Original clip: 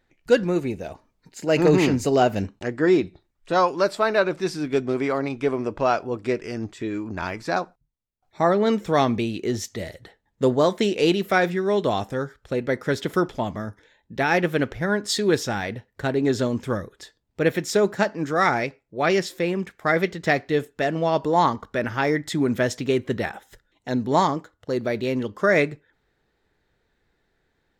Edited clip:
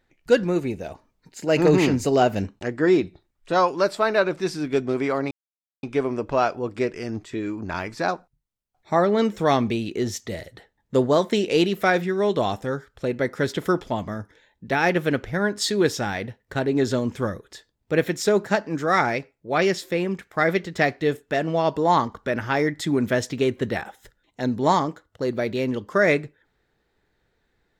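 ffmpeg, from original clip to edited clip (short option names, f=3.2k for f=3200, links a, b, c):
-filter_complex "[0:a]asplit=2[a][b];[a]atrim=end=5.31,asetpts=PTS-STARTPTS,afade=t=out:st=5.306:d=0.004:c=hsin,apad=pad_dur=0.52[c];[b]atrim=start=5.31,asetpts=PTS-STARTPTS,afade=t=in:d=0.004:c=hsin[d];[c][d]concat=n=2:v=0:a=1"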